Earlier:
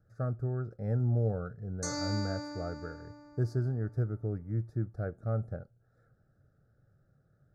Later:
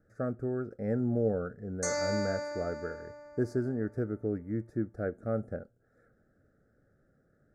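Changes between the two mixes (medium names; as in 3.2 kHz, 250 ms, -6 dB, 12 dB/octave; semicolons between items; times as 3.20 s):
background: add resonant low shelf 450 Hz -10 dB, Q 3; master: add graphic EQ 125/250/500/1000/2000/4000/8000 Hz -9/+9/+5/-4/+10/-6/+6 dB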